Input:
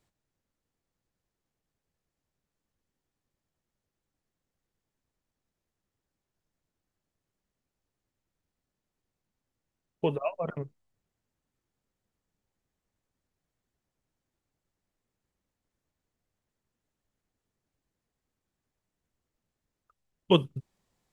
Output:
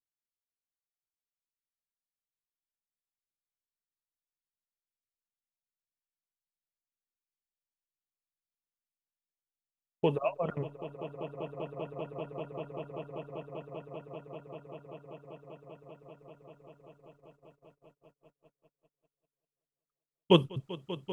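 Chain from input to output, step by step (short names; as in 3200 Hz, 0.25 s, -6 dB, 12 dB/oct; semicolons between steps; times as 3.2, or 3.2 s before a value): swelling echo 0.195 s, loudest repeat 8, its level -14 dB; gate -59 dBFS, range -30 dB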